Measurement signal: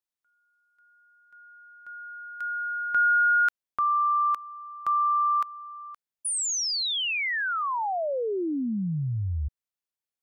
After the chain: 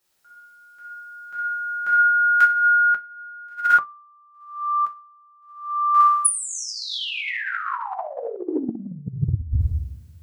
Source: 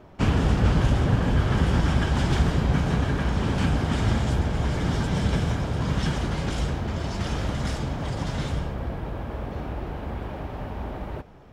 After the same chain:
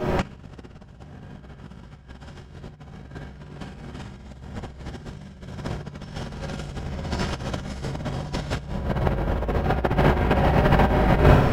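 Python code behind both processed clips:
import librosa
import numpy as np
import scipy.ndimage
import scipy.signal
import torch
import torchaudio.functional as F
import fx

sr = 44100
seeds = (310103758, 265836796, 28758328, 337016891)

p1 = x + fx.echo_feedback(x, sr, ms=61, feedback_pct=47, wet_db=-4.5, dry=0)
p2 = fx.rev_double_slope(p1, sr, seeds[0], early_s=0.7, late_s=1.8, knee_db=-25, drr_db=-6.5)
p3 = fx.over_compress(p2, sr, threshold_db=-28.0, ratio=-0.5)
p4 = fx.dynamic_eq(p3, sr, hz=1900.0, q=1.2, threshold_db=-39.0, ratio=4.0, max_db=3)
y = p4 * librosa.db_to_amplitude(3.5)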